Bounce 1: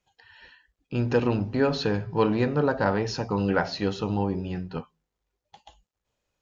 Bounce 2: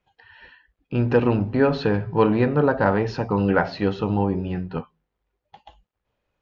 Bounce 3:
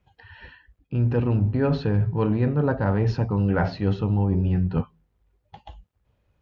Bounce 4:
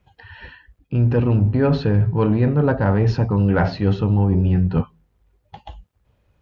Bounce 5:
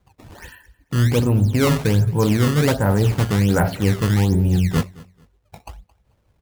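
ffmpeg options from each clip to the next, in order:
-af "lowpass=2800,volume=1.68"
-af "equalizer=f=80:w=0.49:g=14.5,areverse,acompressor=threshold=0.1:ratio=6,areverse,volume=1.12"
-af "asoftclip=type=tanh:threshold=0.282,volume=1.88"
-af "acrusher=samples=16:mix=1:aa=0.000001:lfo=1:lforange=25.6:lforate=1.3,aecho=1:1:220|440:0.0794|0.0199"

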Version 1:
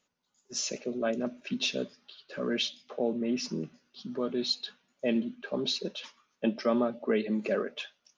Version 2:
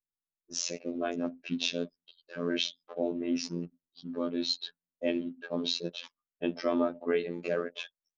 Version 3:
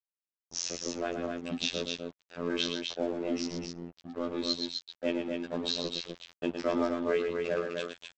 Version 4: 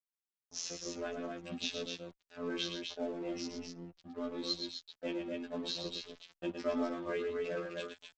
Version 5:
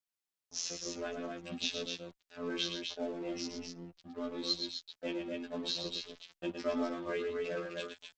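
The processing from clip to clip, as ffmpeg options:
-af "anlmdn=0.0398,afftfilt=real='hypot(re,im)*cos(PI*b)':imag='0':win_size=2048:overlap=0.75,volume=1.33"
-af "aresample=16000,aeval=exprs='sgn(val(0))*max(abs(val(0))-0.00631,0)':c=same,aresample=44100,aecho=1:1:113.7|253.6:0.447|0.562"
-filter_complex "[0:a]asplit=2[s0][s1];[s1]adelay=4.1,afreqshift=1.6[s2];[s0][s2]amix=inputs=2:normalize=1,volume=0.708"
-af "equalizer=f=4600:w=0.57:g=3"

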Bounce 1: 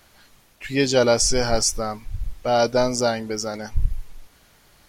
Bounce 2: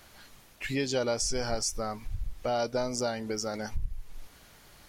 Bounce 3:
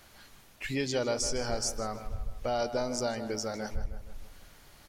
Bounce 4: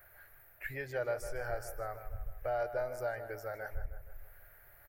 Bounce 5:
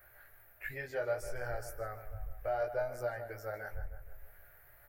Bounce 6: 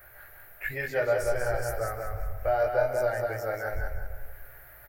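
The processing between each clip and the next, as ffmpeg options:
-af "acompressor=threshold=0.0251:ratio=2.5"
-filter_complex "[0:a]asplit=2[s0][s1];[s1]adelay=156,lowpass=f=3300:p=1,volume=0.299,asplit=2[s2][s3];[s3]adelay=156,lowpass=f=3300:p=1,volume=0.54,asplit=2[s4][s5];[s5]adelay=156,lowpass=f=3300:p=1,volume=0.54,asplit=2[s6][s7];[s7]adelay=156,lowpass=f=3300:p=1,volume=0.54,asplit=2[s8][s9];[s9]adelay=156,lowpass=f=3300:p=1,volume=0.54,asplit=2[s10][s11];[s11]adelay=156,lowpass=f=3300:p=1,volume=0.54[s12];[s0][s2][s4][s6][s8][s10][s12]amix=inputs=7:normalize=0,volume=0.841"
-af "firequalizer=gain_entry='entry(120,0);entry(220,-23);entry(330,-7);entry(630,4);entry(1000,-6);entry(1600,8);entry(3100,-15);entry(6200,-19);entry(14000,14)':delay=0.05:min_phase=1,volume=0.531"
-af "flanger=delay=16.5:depth=3.5:speed=0.65,volume=1.33"
-af "aecho=1:1:190|380|570|760:0.596|0.197|0.0649|0.0214,volume=2.66"

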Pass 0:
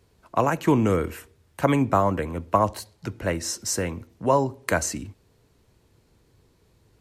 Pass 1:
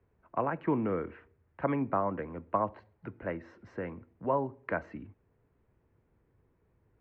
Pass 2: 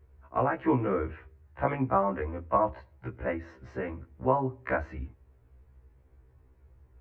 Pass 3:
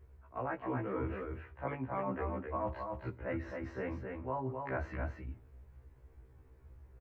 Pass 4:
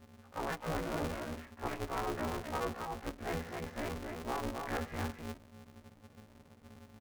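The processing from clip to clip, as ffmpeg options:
-filter_complex "[0:a]lowpass=f=2100:w=0.5412,lowpass=f=2100:w=1.3066,acrossover=split=130|1400[s0][s1][s2];[s0]acompressor=threshold=0.00631:ratio=6[s3];[s3][s1][s2]amix=inputs=3:normalize=0,volume=0.355"
-af "lowshelf=f=120:t=q:w=3:g=8.5,afftfilt=real='re*1.73*eq(mod(b,3),0)':imag='im*1.73*eq(mod(b,3),0)':win_size=2048:overlap=0.75,volume=2.24"
-af "areverse,acompressor=threshold=0.0178:ratio=6,areverse,aecho=1:1:264:0.596"
-af "aeval=exprs='val(0)*sgn(sin(2*PI*160*n/s))':c=same"

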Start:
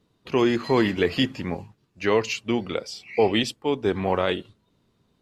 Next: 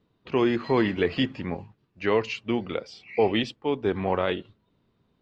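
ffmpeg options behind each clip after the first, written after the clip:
-af "lowpass=3500,volume=0.794"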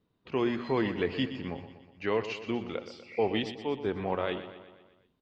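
-af "aecho=1:1:122|244|366|488|610|732:0.251|0.141|0.0788|0.0441|0.0247|0.0138,volume=0.501"

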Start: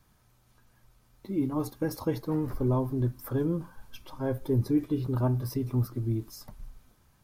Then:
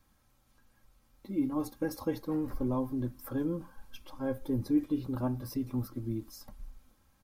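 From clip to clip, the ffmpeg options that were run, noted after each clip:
-af "aecho=1:1:3.7:0.5,volume=0.596"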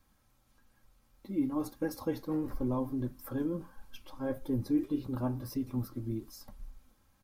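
-af "flanger=delay=3.4:depth=6.8:regen=-79:speed=1.6:shape=triangular,volume=1.5"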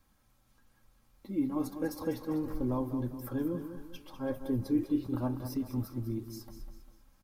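-af "aecho=1:1:199|398|597|796:0.316|0.133|0.0558|0.0234"

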